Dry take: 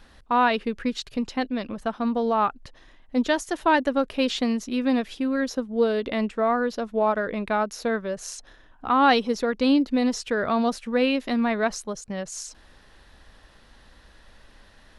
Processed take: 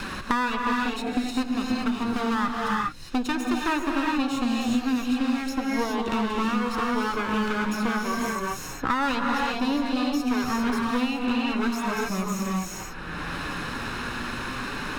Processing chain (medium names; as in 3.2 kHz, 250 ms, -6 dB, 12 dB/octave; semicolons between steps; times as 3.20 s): comb filter that takes the minimum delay 0.75 ms; flange 0.32 Hz, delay 5.1 ms, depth 3.4 ms, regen +53%; gated-style reverb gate 430 ms rising, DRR -0.5 dB; three bands compressed up and down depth 100%